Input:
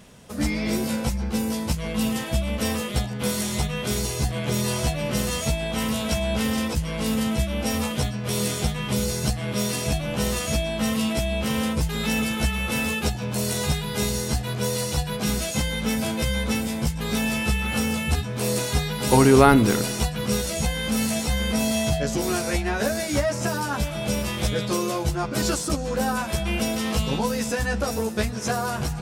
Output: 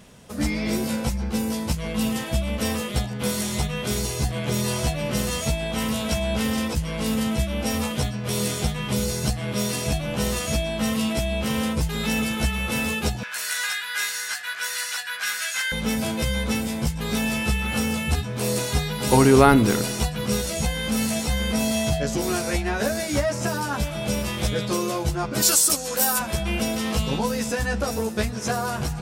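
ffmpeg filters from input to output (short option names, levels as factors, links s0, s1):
-filter_complex "[0:a]asettb=1/sr,asplit=3[s0][s1][s2];[s0]atrim=end=13.234[s3];[s1]atrim=start=13.23:end=15.72,asetpts=PTS-STARTPTS,afade=t=in:d=0.004:c=qsin,afade=t=out:st=2.486:d=0.004:c=qsin,highpass=f=1600:t=q:w=4.7[s4];[s2]atrim=start=15.716[s5];[s3][s4]acrossfade=d=0.004:c1=hsin:c2=qsin[s6];[s6][s5]acrossfade=d=0.004:c1=qsin:c2=hsin,asplit=3[s7][s8][s9];[s7]afade=t=out:st=25.41:d=0.02[s10];[s8]aemphasis=mode=production:type=riaa,afade=t=in:st=25.41:d=0.02,afade=t=out:st=26.18:d=0.02[s11];[s9]afade=t=in:st=26.18:d=0.02[s12];[s10][s11][s12]amix=inputs=3:normalize=0"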